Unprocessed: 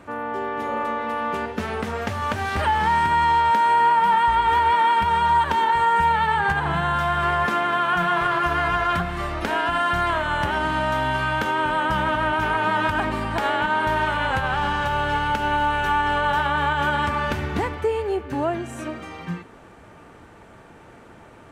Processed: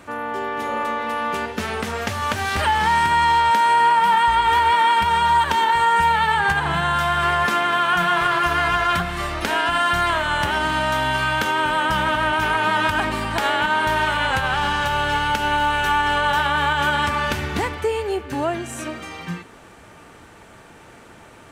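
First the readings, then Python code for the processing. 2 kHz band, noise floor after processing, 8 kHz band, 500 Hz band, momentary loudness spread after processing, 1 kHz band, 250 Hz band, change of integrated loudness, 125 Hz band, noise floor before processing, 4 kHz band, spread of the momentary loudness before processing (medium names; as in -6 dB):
+3.5 dB, -45 dBFS, no reading, +0.5 dB, 9 LU, +1.5 dB, 0.0 dB, +2.0 dB, 0.0 dB, -47 dBFS, +6.5 dB, 9 LU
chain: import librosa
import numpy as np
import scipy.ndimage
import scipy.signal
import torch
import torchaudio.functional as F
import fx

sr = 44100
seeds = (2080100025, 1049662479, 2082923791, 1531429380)

y = fx.high_shelf(x, sr, hz=2300.0, db=10.0)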